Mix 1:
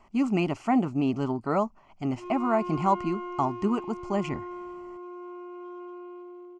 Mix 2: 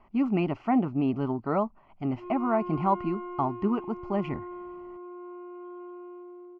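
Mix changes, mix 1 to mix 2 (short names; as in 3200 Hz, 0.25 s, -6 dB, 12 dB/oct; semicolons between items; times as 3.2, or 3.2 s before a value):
background: add air absorption 210 m; master: add air absorption 320 m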